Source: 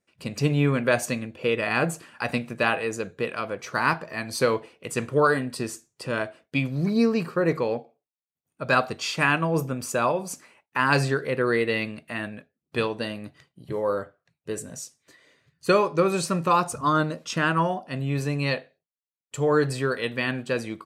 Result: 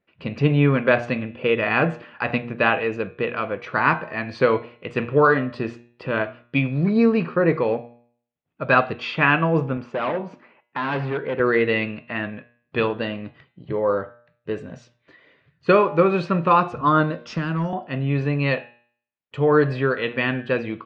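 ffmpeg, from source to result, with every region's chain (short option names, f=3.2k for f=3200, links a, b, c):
-filter_complex "[0:a]asettb=1/sr,asplit=3[a][b][c];[a]atrim=end=9.774[d];[b]atrim=start=9.77:end=11.4,asetpts=PTS-STARTPTS,afade=t=in:d=0.004:c=qsin,afade=t=out:st=1.626:d=0.004:c=qsin,highshelf=f=2.4k:g=-9.5,asoftclip=type=hard:threshold=-25.5dB,highpass=140,lowpass=7.1k[e];[c]atrim=start=11.396[f];[d][e]acrossfade=d=0.004:c1=hsin:c2=qsin[g];[g][f]acrossfade=d=0.004:c1=qsin:c2=hsin,asettb=1/sr,asplit=3[h][i][j];[h]atrim=end=17.264[k];[i]atrim=start=17.26:end=17.73,asetpts=PTS-STARTPTS,afade=t=in:d=0.004:c=qsin,afade=t=out:st=0.466:d=0.004:c=qsin,highshelf=f=4.3k:t=q:w=3:g=7.5,acrossover=split=290|3000[l][m][n];[m]acompressor=threshold=-33dB:ratio=6:attack=3.2:release=140:knee=2.83:detection=peak[o];[l][o][n]amix=inputs=3:normalize=0,asoftclip=type=hard:threshold=-22dB[p];[j]atrim=start=17.726[q];[k][p]acrossfade=d=0.004:c1=hsin:c2=qsin[r];[r][q]acrossfade=d=0.004:c1=qsin:c2=hsin,lowpass=f=3.2k:w=0.5412,lowpass=f=3.2k:w=1.3066,bandreject=f=119.2:t=h:w=4,bandreject=f=238.4:t=h:w=4,bandreject=f=357.6:t=h:w=4,bandreject=f=476.8:t=h:w=4,bandreject=f=596:t=h:w=4,bandreject=f=715.2:t=h:w=4,bandreject=f=834.4:t=h:w=4,bandreject=f=953.6:t=h:w=4,bandreject=f=1.0728k:t=h:w=4,bandreject=f=1.192k:t=h:w=4,bandreject=f=1.3112k:t=h:w=4,bandreject=f=1.4304k:t=h:w=4,bandreject=f=1.5496k:t=h:w=4,bandreject=f=1.6688k:t=h:w=4,bandreject=f=1.788k:t=h:w=4,bandreject=f=1.9072k:t=h:w=4,bandreject=f=2.0264k:t=h:w=4,bandreject=f=2.1456k:t=h:w=4,bandreject=f=2.2648k:t=h:w=4,bandreject=f=2.384k:t=h:w=4,bandreject=f=2.5032k:t=h:w=4,bandreject=f=2.6224k:t=h:w=4,bandreject=f=2.7416k:t=h:w=4,bandreject=f=2.8608k:t=h:w=4,bandreject=f=2.98k:t=h:w=4,bandreject=f=3.0992k:t=h:w=4,bandreject=f=3.2184k:t=h:w=4,bandreject=f=3.3376k:t=h:w=4,bandreject=f=3.4568k:t=h:w=4,bandreject=f=3.576k:t=h:w=4,bandreject=f=3.6952k:t=h:w=4,bandreject=f=3.8144k:t=h:w=4,bandreject=f=3.9336k:t=h:w=4,bandreject=f=4.0528k:t=h:w=4,bandreject=f=4.172k:t=h:w=4,volume=4.5dB"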